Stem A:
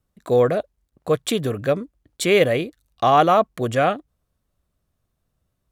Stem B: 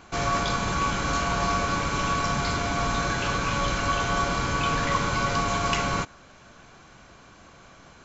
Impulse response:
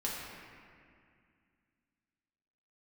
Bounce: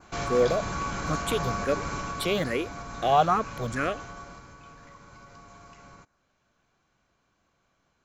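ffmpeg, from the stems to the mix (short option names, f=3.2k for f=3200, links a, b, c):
-filter_complex "[0:a]asplit=2[a][b];[b]afreqshift=2.3[c];[a][c]amix=inputs=2:normalize=1,volume=-4dB[d];[1:a]adynamicequalizer=threshold=0.00447:dfrequency=3200:dqfactor=1.8:tfrequency=3200:tqfactor=1.8:attack=5:release=100:ratio=0.375:range=3.5:mode=cutabove:tftype=bell,alimiter=limit=-18.5dB:level=0:latency=1:release=195,volume=-3dB,afade=t=out:st=1.84:d=0.61:silence=0.421697,afade=t=out:st=3.84:d=0.71:silence=0.281838[e];[d][e]amix=inputs=2:normalize=0"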